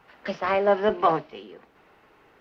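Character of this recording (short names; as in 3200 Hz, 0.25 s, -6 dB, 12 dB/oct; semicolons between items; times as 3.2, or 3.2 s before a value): noise floor -59 dBFS; spectral tilt -3.5 dB/oct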